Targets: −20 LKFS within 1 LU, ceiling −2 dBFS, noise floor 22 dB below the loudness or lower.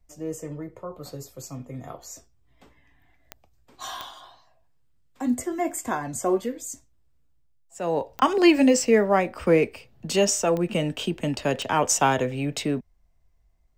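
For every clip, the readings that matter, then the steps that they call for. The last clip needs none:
number of clicks 5; integrated loudness −23.5 LKFS; sample peak −6.0 dBFS; target loudness −20.0 LKFS
→ click removal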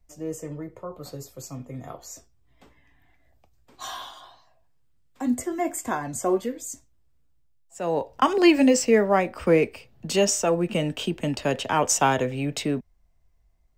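number of clicks 0; integrated loudness −23.5 LKFS; sample peak −6.0 dBFS; target loudness −20.0 LKFS
→ level +3.5 dB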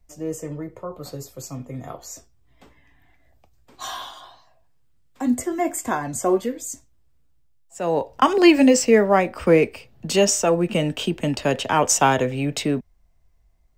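integrated loudness −20.5 LKFS; sample peak −2.5 dBFS; background noise floor −58 dBFS

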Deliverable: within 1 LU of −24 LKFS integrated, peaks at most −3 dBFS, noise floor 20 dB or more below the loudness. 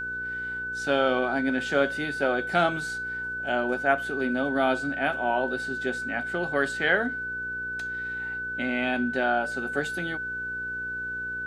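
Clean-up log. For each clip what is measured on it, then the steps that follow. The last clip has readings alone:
mains hum 60 Hz; hum harmonics up to 480 Hz; level of the hum −45 dBFS; interfering tone 1,500 Hz; level of the tone −30 dBFS; integrated loudness −27.0 LKFS; sample peak −8.5 dBFS; target loudness −24.0 LKFS
→ hum removal 60 Hz, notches 8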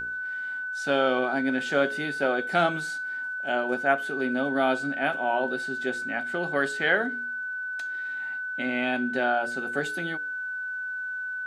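mains hum none found; interfering tone 1,500 Hz; level of the tone −30 dBFS
→ notch filter 1,500 Hz, Q 30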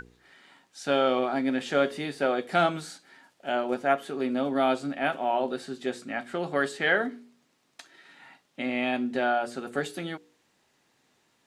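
interfering tone none found; integrated loudness −28.0 LKFS; sample peak −9.5 dBFS; target loudness −24.0 LKFS
→ level +4 dB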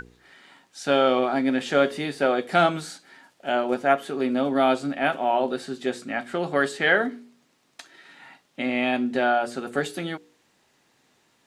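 integrated loudness −24.0 LKFS; sample peak −5.5 dBFS; background noise floor −66 dBFS

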